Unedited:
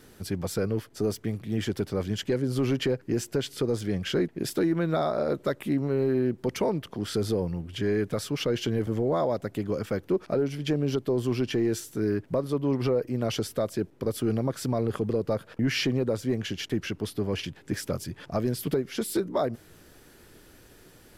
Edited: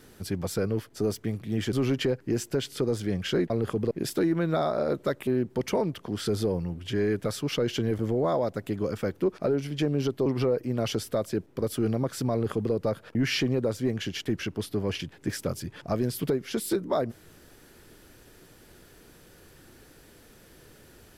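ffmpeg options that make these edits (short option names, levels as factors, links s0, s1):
-filter_complex "[0:a]asplit=6[s0][s1][s2][s3][s4][s5];[s0]atrim=end=1.732[s6];[s1]atrim=start=2.538:end=4.312[s7];[s2]atrim=start=14.758:end=15.172[s8];[s3]atrim=start=4.308:end=5.672[s9];[s4]atrim=start=6.148:end=11.142[s10];[s5]atrim=start=12.698[s11];[s6][s7]acrossfade=d=0.004:c1=hsin:c2=hsin[s12];[s12][s8]acrossfade=d=0.004:c1=hsin:c2=hsin[s13];[s13][s9]acrossfade=d=0.004:c1=hsin:c2=hsin[s14];[s14][s10]acrossfade=d=0.004:c1=hsin:c2=hsin[s15];[s15][s11]acrossfade=d=0.004:c1=hsin:c2=hsin"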